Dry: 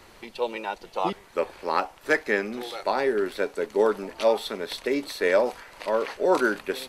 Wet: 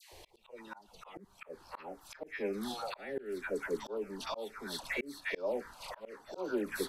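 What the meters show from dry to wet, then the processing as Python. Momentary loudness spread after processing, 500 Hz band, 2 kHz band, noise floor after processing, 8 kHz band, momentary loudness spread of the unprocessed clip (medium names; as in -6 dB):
16 LU, -14.5 dB, -12.5 dB, -63 dBFS, -7.0 dB, 9 LU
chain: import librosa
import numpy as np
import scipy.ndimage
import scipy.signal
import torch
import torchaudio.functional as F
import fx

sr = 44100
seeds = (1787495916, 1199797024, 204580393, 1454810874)

y = fx.env_phaser(x, sr, low_hz=220.0, high_hz=1900.0, full_db=-17.5)
y = fx.dispersion(y, sr, late='lows', ms=123.0, hz=1100.0)
y = fx.auto_swell(y, sr, attack_ms=537.0)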